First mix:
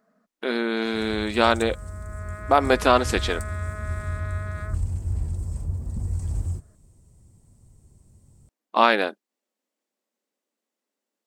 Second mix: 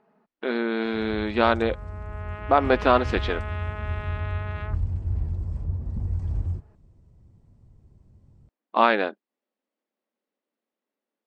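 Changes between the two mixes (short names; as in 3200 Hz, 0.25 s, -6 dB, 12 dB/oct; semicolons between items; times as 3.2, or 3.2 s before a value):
first sound: remove fixed phaser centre 580 Hz, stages 8; master: add air absorption 240 m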